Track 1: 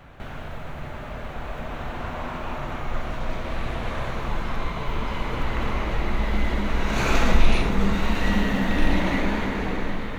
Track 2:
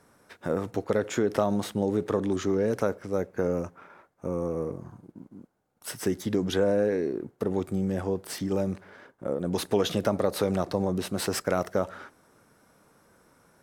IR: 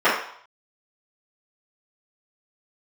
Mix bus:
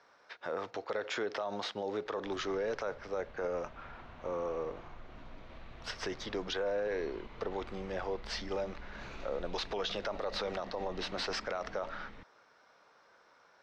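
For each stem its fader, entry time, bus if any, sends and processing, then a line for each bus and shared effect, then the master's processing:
-19.0 dB, 2.05 s, no send, compressor 2:1, threshold -28 dBFS, peak gain reduction 11 dB
+0.5 dB, 0.00 s, no send, three-band isolator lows -20 dB, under 490 Hz, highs -24 dB, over 6200 Hz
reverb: off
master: resonant high shelf 7100 Hz -12.5 dB, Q 1.5; limiter -26.5 dBFS, peak gain reduction 12 dB

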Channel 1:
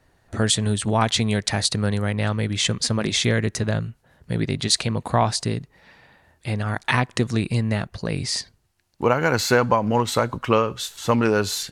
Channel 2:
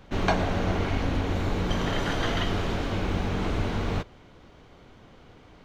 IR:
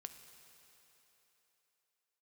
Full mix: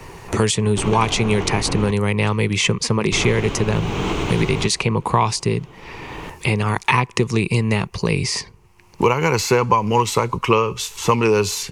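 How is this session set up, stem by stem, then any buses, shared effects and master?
+2.0 dB, 0.00 s, no send, ripple EQ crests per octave 0.85, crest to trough 6 dB
+0.5 dB, 0.65 s, muted 1.91–3.12, no send, limiter -18.5 dBFS, peak gain reduction 8 dB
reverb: off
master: ripple EQ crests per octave 0.7, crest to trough 7 dB; three-band squash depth 70%

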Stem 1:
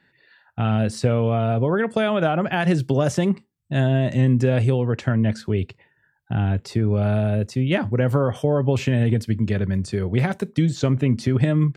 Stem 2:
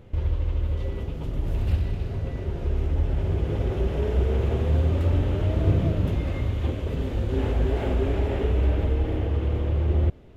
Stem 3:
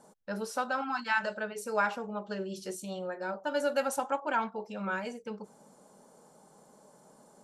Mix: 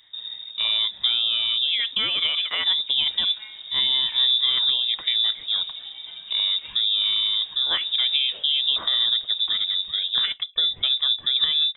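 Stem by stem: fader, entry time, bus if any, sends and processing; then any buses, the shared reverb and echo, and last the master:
-3.5 dB, 0.00 s, no send, dry
-10.0 dB, 0.00 s, no send, high shelf 2800 Hz +9.5 dB; auto duck -7 dB, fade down 0.60 s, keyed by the first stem
-8.0 dB, 2.30 s, no send, resonator 51 Hz, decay 0.58 s, harmonics all, mix 90%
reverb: off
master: inverted band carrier 3700 Hz

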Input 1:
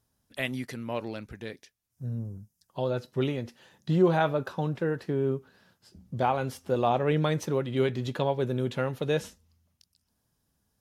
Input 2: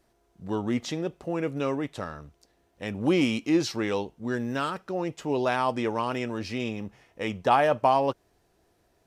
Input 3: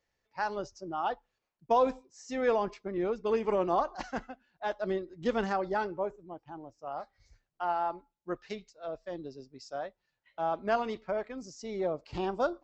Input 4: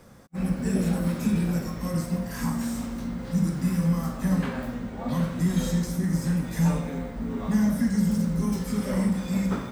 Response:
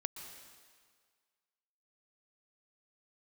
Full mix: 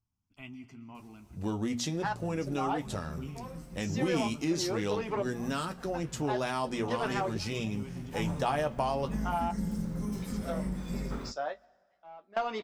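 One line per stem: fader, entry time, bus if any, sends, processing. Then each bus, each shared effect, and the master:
-11.5 dB, 0.00 s, send -4 dB, tilt -1.5 dB/oct; fixed phaser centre 2600 Hz, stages 8
+2.0 dB, 0.95 s, send -19.5 dB, tone controls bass +7 dB, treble +11 dB; notches 60/120/180/240 Hz
+1.5 dB, 1.65 s, send -22.5 dB, overdrive pedal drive 16 dB, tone 6300 Hz, clips at -12 dBFS; step gate "xx.xxx..." 63 bpm -24 dB
8.01 s -15.5 dB -> 8.3 s -3 dB, 1.60 s, send -23.5 dB, octaver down 2 oct, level -1 dB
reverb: on, RT60 1.8 s, pre-delay 0.113 s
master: flange 0.4 Hz, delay 9.8 ms, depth 3.8 ms, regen -45%; compressor 2:1, threshold -33 dBFS, peak gain reduction 9.5 dB

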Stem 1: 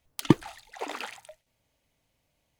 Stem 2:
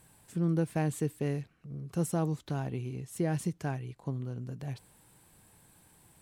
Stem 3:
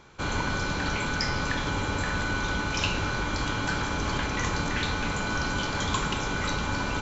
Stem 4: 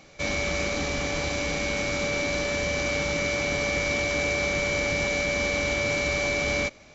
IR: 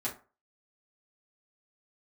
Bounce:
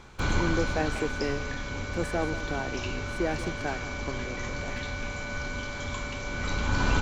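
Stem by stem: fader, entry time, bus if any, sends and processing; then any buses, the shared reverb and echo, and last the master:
-20.0 dB, 0.00 s, no send, no echo send, dry
+2.5 dB, 0.00 s, no send, echo send -14.5 dB, three-band isolator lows -21 dB, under 260 Hz, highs -21 dB, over 5700 Hz; sample leveller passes 1
+1.5 dB, 0.00 s, send -21 dB, no echo send, low shelf 84 Hz +10 dB; auto duck -15 dB, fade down 1.40 s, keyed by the second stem
-14.0 dB, 0.00 s, no send, no echo send, dry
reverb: on, RT60 0.35 s, pre-delay 4 ms
echo: echo 0.181 s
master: dry

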